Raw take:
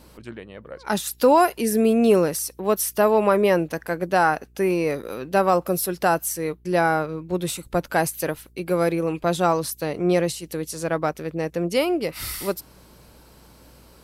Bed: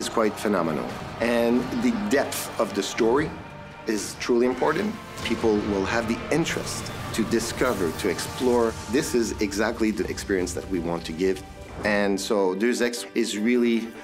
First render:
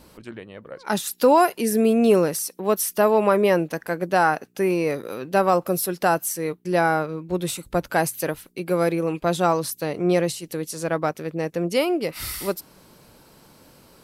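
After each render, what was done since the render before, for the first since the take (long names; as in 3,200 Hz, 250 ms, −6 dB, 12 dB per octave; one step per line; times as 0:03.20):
hum removal 60 Hz, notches 2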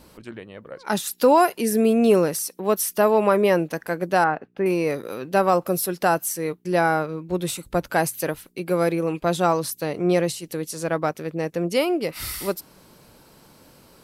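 0:04.24–0:04.66: high-frequency loss of the air 440 metres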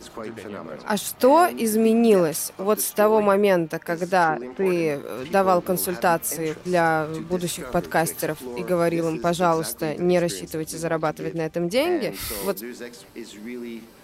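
mix in bed −13 dB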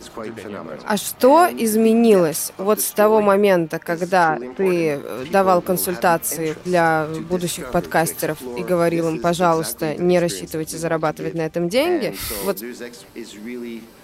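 level +3.5 dB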